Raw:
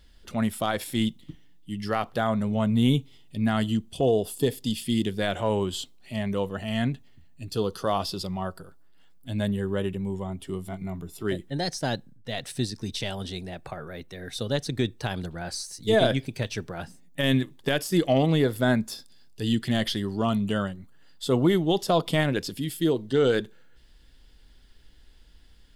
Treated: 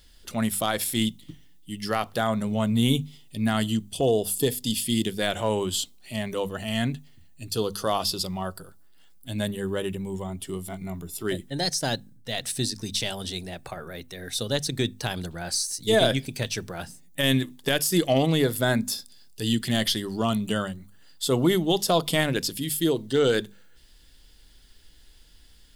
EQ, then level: treble shelf 4.4 kHz +12 dB; hum notches 50/100/150/200/250 Hz; 0.0 dB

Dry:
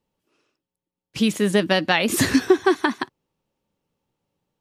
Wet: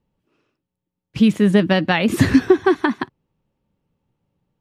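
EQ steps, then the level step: tone controls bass +9 dB, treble -10 dB; +1.0 dB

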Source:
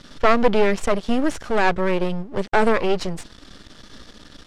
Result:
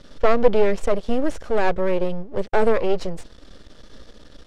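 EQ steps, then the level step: bass shelf 81 Hz +10.5 dB; peaking EQ 510 Hz +9 dB 0.93 oct; -6.5 dB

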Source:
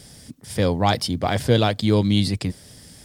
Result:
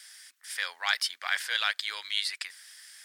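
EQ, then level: ladder high-pass 1.4 kHz, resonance 50%; +6.0 dB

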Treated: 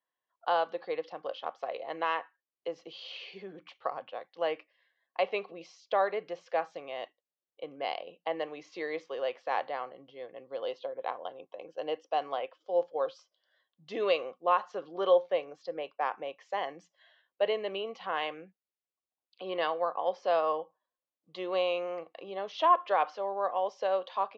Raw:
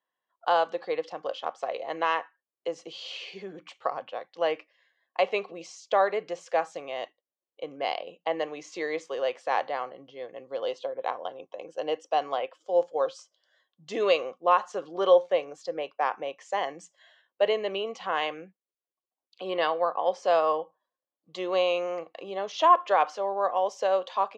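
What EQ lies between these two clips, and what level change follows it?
low-pass 4.9 kHz 24 dB/octave; -4.5 dB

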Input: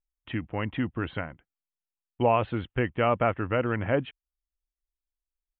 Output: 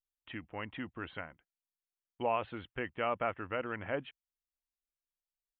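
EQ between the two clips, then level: peaking EQ 120 Hz -6.5 dB 0.2 oct; bass shelf 450 Hz -8.5 dB; -6.5 dB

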